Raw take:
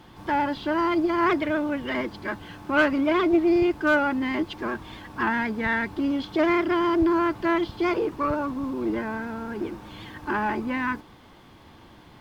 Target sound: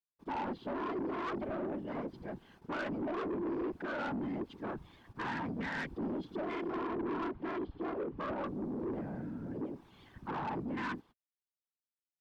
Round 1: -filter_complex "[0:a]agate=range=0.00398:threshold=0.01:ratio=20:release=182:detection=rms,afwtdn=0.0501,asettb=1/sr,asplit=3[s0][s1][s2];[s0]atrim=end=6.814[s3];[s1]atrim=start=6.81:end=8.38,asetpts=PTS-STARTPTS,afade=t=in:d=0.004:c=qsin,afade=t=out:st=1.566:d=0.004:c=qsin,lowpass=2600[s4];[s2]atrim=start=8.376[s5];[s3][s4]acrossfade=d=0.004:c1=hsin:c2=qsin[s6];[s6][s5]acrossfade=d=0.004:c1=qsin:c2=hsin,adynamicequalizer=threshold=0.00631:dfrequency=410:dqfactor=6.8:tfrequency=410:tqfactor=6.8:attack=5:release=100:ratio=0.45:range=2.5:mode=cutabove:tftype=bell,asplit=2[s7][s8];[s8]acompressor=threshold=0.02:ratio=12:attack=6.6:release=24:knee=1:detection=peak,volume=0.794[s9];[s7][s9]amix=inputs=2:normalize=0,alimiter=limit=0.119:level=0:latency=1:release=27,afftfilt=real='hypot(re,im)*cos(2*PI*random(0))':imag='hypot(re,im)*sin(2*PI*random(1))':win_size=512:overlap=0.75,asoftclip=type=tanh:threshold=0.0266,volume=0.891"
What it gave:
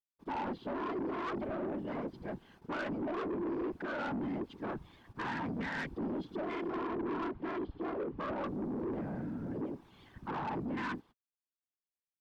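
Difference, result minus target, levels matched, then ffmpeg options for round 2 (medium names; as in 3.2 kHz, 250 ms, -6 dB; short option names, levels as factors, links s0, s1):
compression: peak gain reduction -10 dB
-filter_complex "[0:a]agate=range=0.00398:threshold=0.01:ratio=20:release=182:detection=rms,afwtdn=0.0501,asettb=1/sr,asplit=3[s0][s1][s2];[s0]atrim=end=6.814[s3];[s1]atrim=start=6.81:end=8.38,asetpts=PTS-STARTPTS,afade=t=in:d=0.004:c=qsin,afade=t=out:st=1.566:d=0.004:c=qsin,lowpass=2600[s4];[s2]atrim=start=8.376[s5];[s3][s4]acrossfade=d=0.004:c1=hsin:c2=qsin[s6];[s6][s5]acrossfade=d=0.004:c1=qsin:c2=hsin,adynamicequalizer=threshold=0.00631:dfrequency=410:dqfactor=6.8:tfrequency=410:tqfactor=6.8:attack=5:release=100:ratio=0.45:range=2.5:mode=cutabove:tftype=bell,asplit=2[s7][s8];[s8]acompressor=threshold=0.00562:ratio=12:attack=6.6:release=24:knee=1:detection=peak,volume=0.794[s9];[s7][s9]amix=inputs=2:normalize=0,alimiter=limit=0.119:level=0:latency=1:release=27,afftfilt=real='hypot(re,im)*cos(2*PI*random(0))':imag='hypot(re,im)*sin(2*PI*random(1))':win_size=512:overlap=0.75,asoftclip=type=tanh:threshold=0.0266,volume=0.891"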